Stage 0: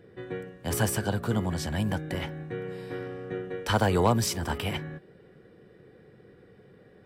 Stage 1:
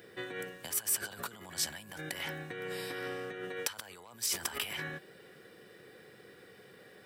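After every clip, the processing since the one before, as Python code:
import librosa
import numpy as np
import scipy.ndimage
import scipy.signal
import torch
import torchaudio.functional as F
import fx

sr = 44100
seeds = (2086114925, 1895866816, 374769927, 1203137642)

y = fx.dynamic_eq(x, sr, hz=1700.0, q=0.77, threshold_db=-41.0, ratio=4.0, max_db=4)
y = fx.over_compress(y, sr, threshold_db=-37.0, ratio=-1.0)
y = fx.tilt_eq(y, sr, slope=4.0)
y = F.gain(torch.from_numpy(y), -3.0).numpy()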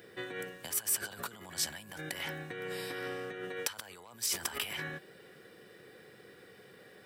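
y = x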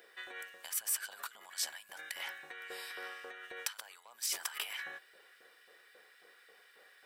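y = fx.filter_lfo_highpass(x, sr, shape='saw_up', hz=3.7, low_hz=560.0, high_hz=1800.0, q=0.99)
y = F.gain(torch.from_numpy(y), -3.0).numpy()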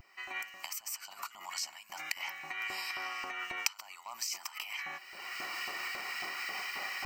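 y = fx.recorder_agc(x, sr, target_db=-24.5, rise_db_per_s=36.0, max_gain_db=30)
y = fx.vibrato(y, sr, rate_hz=0.48, depth_cents=25.0)
y = fx.fixed_phaser(y, sr, hz=2400.0, stages=8)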